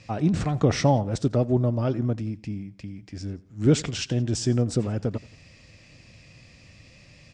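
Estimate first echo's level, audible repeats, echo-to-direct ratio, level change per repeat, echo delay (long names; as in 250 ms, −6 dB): −21.5 dB, 2, −20.5 dB, −5.5 dB, 87 ms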